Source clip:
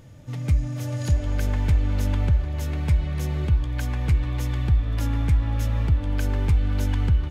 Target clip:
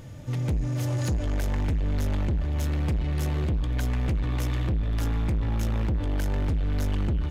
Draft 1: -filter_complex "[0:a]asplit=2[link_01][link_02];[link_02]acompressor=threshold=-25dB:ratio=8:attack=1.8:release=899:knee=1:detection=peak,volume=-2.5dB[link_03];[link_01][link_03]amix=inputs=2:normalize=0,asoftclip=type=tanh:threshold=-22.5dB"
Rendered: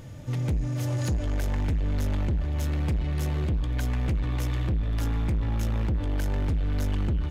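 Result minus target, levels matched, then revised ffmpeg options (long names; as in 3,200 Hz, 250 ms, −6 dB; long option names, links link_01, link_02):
downward compressor: peak gain reduction +5.5 dB
-filter_complex "[0:a]asplit=2[link_01][link_02];[link_02]acompressor=threshold=-18.5dB:ratio=8:attack=1.8:release=899:knee=1:detection=peak,volume=-2.5dB[link_03];[link_01][link_03]amix=inputs=2:normalize=0,asoftclip=type=tanh:threshold=-22.5dB"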